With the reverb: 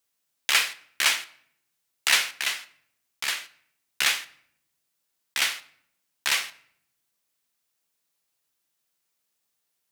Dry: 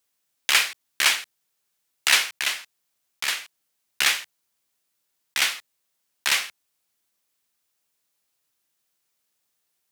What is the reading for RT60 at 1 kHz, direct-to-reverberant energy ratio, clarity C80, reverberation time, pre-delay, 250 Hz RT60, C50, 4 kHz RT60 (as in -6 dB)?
0.60 s, 11.0 dB, 21.0 dB, 0.65 s, 4 ms, 1.0 s, 18.0 dB, 0.50 s